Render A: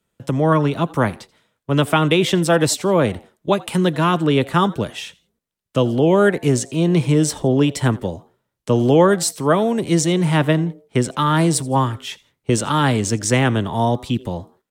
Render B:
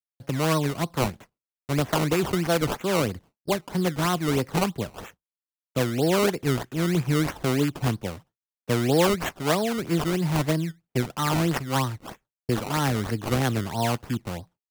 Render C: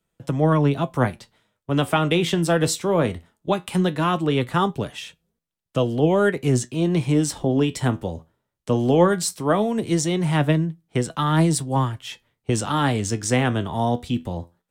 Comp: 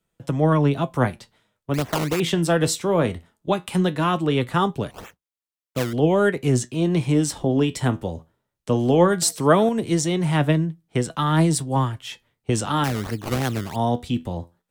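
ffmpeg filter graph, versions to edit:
-filter_complex "[1:a]asplit=3[a][b][c];[2:a]asplit=5[d][e][f][g][h];[d]atrim=end=1.742[i];[a]atrim=start=1.738:end=2.202[j];[e]atrim=start=2.198:end=4.912[k];[b]atrim=start=4.908:end=5.932[l];[f]atrim=start=5.928:end=9.222[m];[0:a]atrim=start=9.218:end=9.692[n];[g]atrim=start=9.688:end=12.842[o];[c]atrim=start=12.838:end=13.762[p];[h]atrim=start=13.758[q];[i][j]acrossfade=d=0.004:c1=hsin:c2=hsin[r];[r][k]acrossfade=d=0.004:c1=hsin:c2=hsin[s];[s][l]acrossfade=d=0.004:c1=hsin:c2=hsin[t];[t][m]acrossfade=d=0.004:c1=hsin:c2=hsin[u];[u][n]acrossfade=d=0.004:c1=hsin:c2=hsin[v];[v][o]acrossfade=d=0.004:c1=hsin:c2=hsin[w];[w][p]acrossfade=d=0.004:c1=hsin:c2=hsin[x];[x][q]acrossfade=d=0.004:c1=hsin:c2=hsin"

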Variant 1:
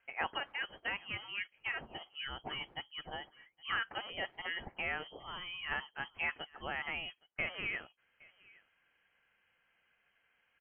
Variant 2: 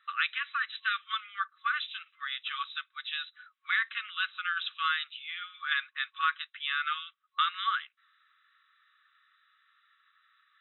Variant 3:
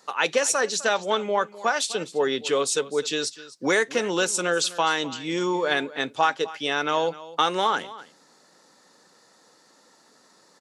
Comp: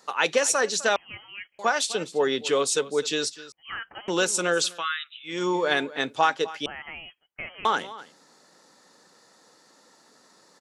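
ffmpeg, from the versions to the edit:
-filter_complex "[0:a]asplit=3[a][b][c];[2:a]asplit=5[d][e][f][g][h];[d]atrim=end=0.962[i];[a]atrim=start=0.958:end=1.592[j];[e]atrim=start=1.588:end=3.522[k];[b]atrim=start=3.518:end=4.082[l];[f]atrim=start=4.078:end=4.86[m];[1:a]atrim=start=4.62:end=5.47[n];[g]atrim=start=5.23:end=6.662[o];[c]atrim=start=6.658:end=7.652[p];[h]atrim=start=7.648[q];[i][j]acrossfade=d=0.004:c1=hsin:c2=hsin[r];[r][k]acrossfade=d=0.004:c1=hsin:c2=hsin[s];[s][l]acrossfade=d=0.004:c1=hsin:c2=hsin[t];[t][m]acrossfade=d=0.004:c1=hsin:c2=hsin[u];[u][n]acrossfade=d=0.24:c1=tri:c2=tri[v];[v][o]acrossfade=d=0.24:c1=tri:c2=tri[w];[w][p]acrossfade=d=0.004:c1=hsin:c2=hsin[x];[x][q]acrossfade=d=0.004:c1=hsin:c2=hsin"

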